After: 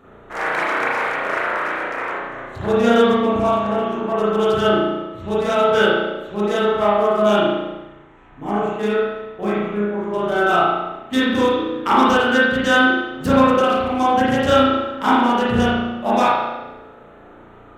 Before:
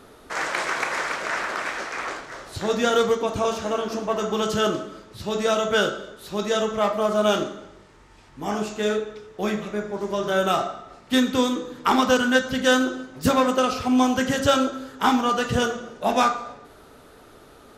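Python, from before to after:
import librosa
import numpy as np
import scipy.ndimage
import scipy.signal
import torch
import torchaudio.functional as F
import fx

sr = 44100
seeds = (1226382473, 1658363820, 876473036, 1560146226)

y = fx.wiener(x, sr, points=9)
y = fx.rev_spring(y, sr, rt60_s=1.0, pass_ms=(34,), chirp_ms=50, drr_db=-8.0)
y = F.gain(torch.from_numpy(y), -2.5).numpy()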